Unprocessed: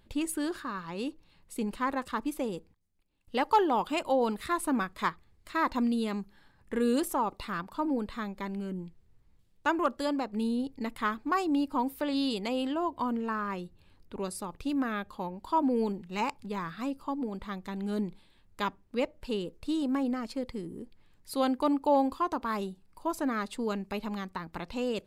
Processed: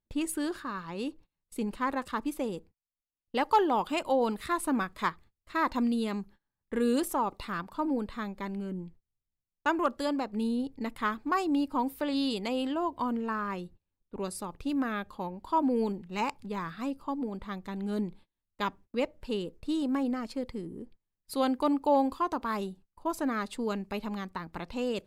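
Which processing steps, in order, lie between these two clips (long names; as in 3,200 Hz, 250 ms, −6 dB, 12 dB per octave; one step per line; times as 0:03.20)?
noise gate −50 dBFS, range −26 dB
one half of a high-frequency compander decoder only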